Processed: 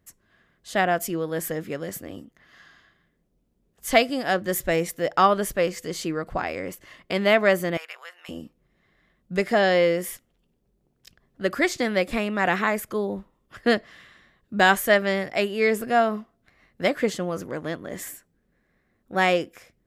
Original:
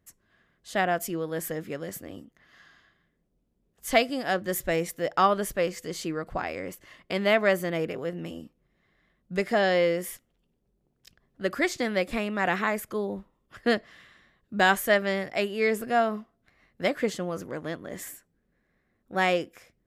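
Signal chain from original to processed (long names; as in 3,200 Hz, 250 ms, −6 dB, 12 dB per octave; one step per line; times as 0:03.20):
0:07.77–0:08.29: high-pass filter 990 Hz 24 dB per octave
level +3.5 dB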